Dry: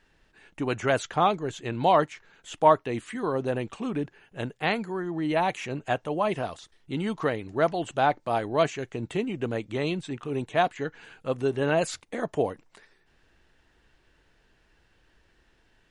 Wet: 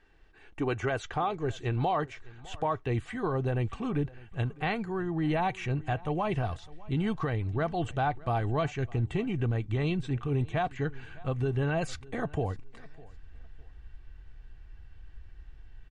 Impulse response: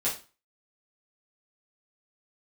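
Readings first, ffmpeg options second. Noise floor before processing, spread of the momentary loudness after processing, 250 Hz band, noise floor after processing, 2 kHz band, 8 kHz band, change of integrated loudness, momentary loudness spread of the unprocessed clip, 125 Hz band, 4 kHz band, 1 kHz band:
-66 dBFS, 6 LU, -2.0 dB, -52 dBFS, -4.5 dB, n/a, -3.5 dB, 11 LU, +5.5 dB, -6.5 dB, -6.0 dB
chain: -filter_complex "[0:a]lowpass=f=2.7k:p=1,aecho=1:1:2.6:0.37,asubboost=boost=8.5:cutoff=120,alimiter=limit=-20dB:level=0:latency=1:release=143,asplit=2[a][b];[b]aecho=0:1:606|1212:0.0794|0.0207[c];[a][c]amix=inputs=2:normalize=0"

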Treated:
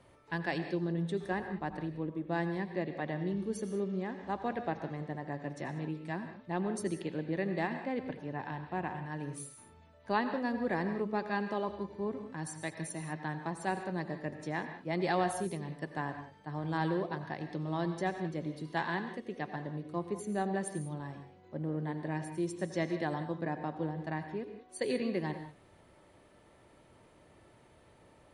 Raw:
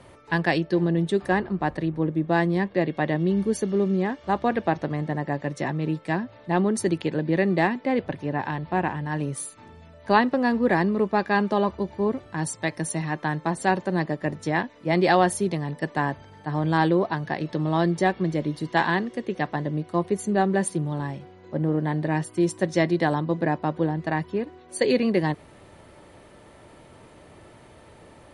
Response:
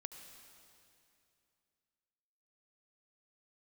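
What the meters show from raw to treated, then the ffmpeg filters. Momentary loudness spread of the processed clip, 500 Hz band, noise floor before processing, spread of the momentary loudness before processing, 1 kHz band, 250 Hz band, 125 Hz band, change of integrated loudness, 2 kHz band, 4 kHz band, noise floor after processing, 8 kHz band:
7 LU, -11.5 dB, -50 dBFS, 7 LU, -11.5 dB, -11.5 dB, -11.5 dB, -11.5 dB, -11.5 dB, -11.5 dB, -61 dBFS, -11.5 dB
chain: -filter_complex "[1:a]atrim=start_sample=2205,afade=t=out:st=0.23:d=0.01,atrim=end_sample=10584,asetrate=38808,aresample=44100[a];[0:a][a]afir=irnorm=-1:irlink=0,volume=-7.5dB"

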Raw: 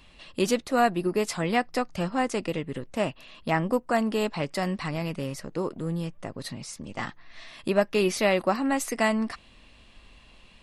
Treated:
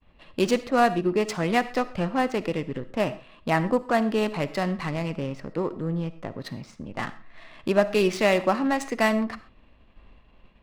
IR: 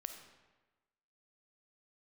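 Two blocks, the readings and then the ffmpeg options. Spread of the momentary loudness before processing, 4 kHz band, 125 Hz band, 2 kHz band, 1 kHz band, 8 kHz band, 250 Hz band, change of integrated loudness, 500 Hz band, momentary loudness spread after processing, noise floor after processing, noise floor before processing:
14 LU, +0.5 dB, +2.0 dB, +2.0 dB, +2.0 dB, -4.0 dB, +2.0 dB, +2.0 dB, +2.0 dB, 14 LU, -56 dBFS, -54 dBFS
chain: -filter_complex "[0:a]adynamicsmooth=sensitivity=6.5:basefreq=1.7k,agate=range=-33dB:threshold=-50dB:ratio=3:detection=peak,asplit=2[a][b];[1:a]atrim=start_sample=2205,atrim=end_sample=6174[c];[b][c]afir=irnorm=-1:irlink=0,volume=3dB[d];[a][d]amix=inputs=2:normalize=0,volume=-3.5dB"

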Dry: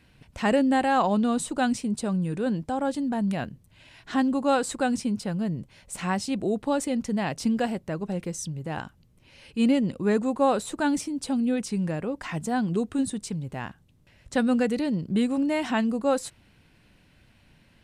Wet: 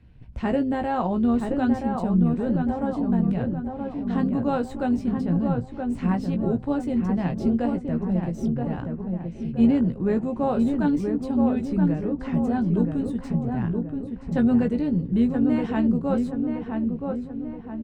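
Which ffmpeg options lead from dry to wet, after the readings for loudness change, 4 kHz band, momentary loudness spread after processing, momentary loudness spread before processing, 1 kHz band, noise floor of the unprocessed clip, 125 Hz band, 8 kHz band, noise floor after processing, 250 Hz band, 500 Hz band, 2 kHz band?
+2.0 dB, under -10 dB, 9 LU, 10 LU, -2.5 dB, -60 dBFS, +7.0 dB, under -15 dB, -38 dBFS, +4.0 dB, -0.5 dB, -6.0 dB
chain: -filter_complex "[0:a]aemphasis=mode=reproduction:type=riaa,asplit=2[a][b];[b]adelay=17,volume=-6.5dB[c];[a][c]amix=inputs=2:normalize=0,tremolo=f=150:d=0.333,asplit=2[d][e];[e]adelay=975,lowpass=f=1.6k:p=1,volume=-4dB,asplit=2[f][g];[g]adelay=975,lowpass=f=1.6k:p=1,volume=0.5,asplit=2[h][i];[i]adelay=975,lowpass=f=1.6k:p=1,volume=0.5,asplit=2[j][k];[k]adelay=975,lowpass=f=1.6k:p=1,volume=0.5,asplit=2[l][m];[m]adelay=975,lowpass=f=1.6k:p=1,volume=0.5,asplit=2[n][o];[o]adelay=975,lowpass=f=1.6k:p=1,volume=0.5[p];[d][f][h][j][l][n][p]amix=inputs=7:normalize=0,acrossover=split=160|5300[q][r][s];[s]aeval=exprs='clip(val(0),-1,0.0015)':c=same[t];[q][r][t]amix=inputs=3:normalize=0,volume=-4dB"

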